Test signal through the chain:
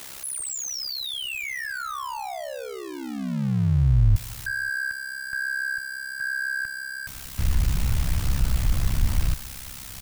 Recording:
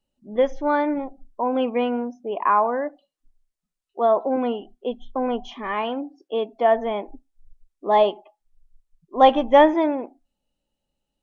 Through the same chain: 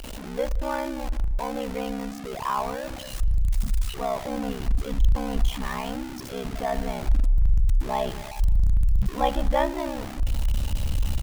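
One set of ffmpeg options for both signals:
ffmpeg -i in.wav -filter_complex "[0:a]aeval=exprs='val(0)+0.5*0.0841*sgn(val(0))':channel_layout=same,anlmdn=0.631,asubboost=boost=10.5:cutoff=120,aeval=exprs='val(0)*sin(2*PI*33*n/s)':channel_layout=same,asplit=2[link_01][link_02];[link_02]adelay=178,lowpass=frequency=3300:poles=1,volume=-22.5dB,asplit=2[link_03][link_04];[link_04]adelay=178,lowpass=frequency=3300:poles=1,volume=0.49,asplit=2[link_05][link_06];[link_06]adelay=178,lowpass=frequency=3300:poles=1,volume=0.49[link_07];[link_01][link_03][link_05][link_07]amix=inputs=4:normalize=0,volume=-6.5dB" out.wav

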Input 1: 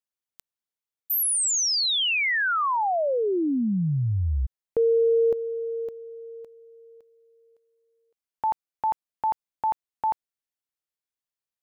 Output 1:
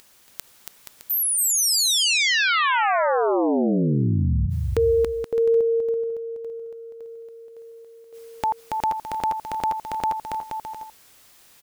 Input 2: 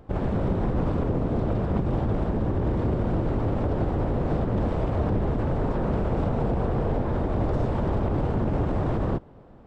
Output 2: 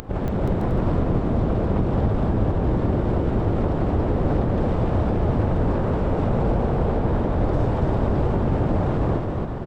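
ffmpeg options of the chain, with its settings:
ffmpeg -i in.wav -af "acompressor=mode=upward:threshold=-33dB:ratio=2.5:attack=10:release=28:knee=2.83:detection=peak,aecho=1:1:280|476|613.2|709.2|776.5:0.631|0.398|0.251|0.158|0.1,volume=1.5dB" out.wav

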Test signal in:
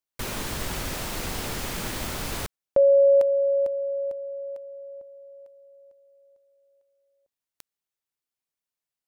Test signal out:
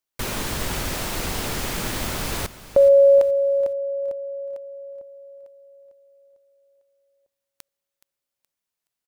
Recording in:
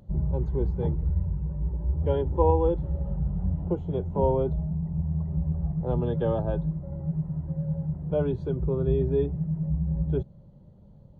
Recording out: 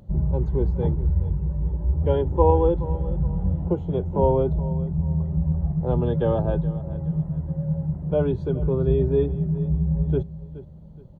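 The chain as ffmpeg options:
ffmpeg -i in.wav -af "aecho=1:1:422|844|1266:0.158|0.0523|0.0173,volume=4dB" out.wav

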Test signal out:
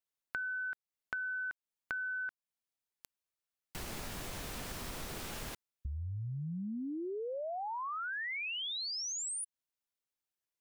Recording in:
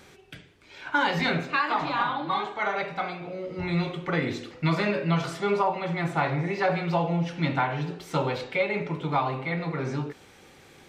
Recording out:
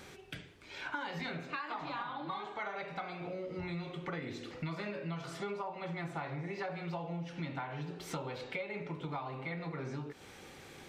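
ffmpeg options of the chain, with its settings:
ffmpeg -i in.wav -af "acompressor=threshold=-38dB:ratio=6" out.wav

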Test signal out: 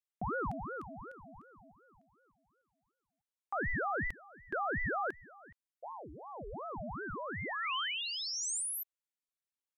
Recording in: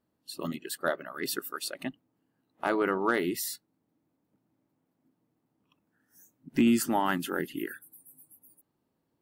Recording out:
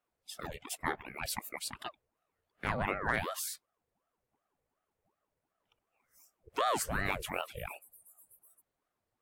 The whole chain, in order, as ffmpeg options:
ffmpeg -i in.wav -af "equalizer=frequency=125:width_type=o:width=1:gain=-9,equalizer=frequency=2000:width_type=o:width=1:gain=6,equalizer=frequency=8000:width_type=o:width=1:gain=5,aeval=exprs='val(0)*sin(2*PI*590*n/s+590*0.7/2.7*sin(2*PI*2.7*n/s))':channel_layout=same,volume=-4dB" out.wav

